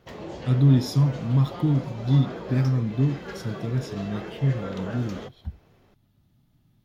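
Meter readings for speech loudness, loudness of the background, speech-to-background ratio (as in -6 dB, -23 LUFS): -24.5 LUFS, -37.5 LUFS, 13.0 dB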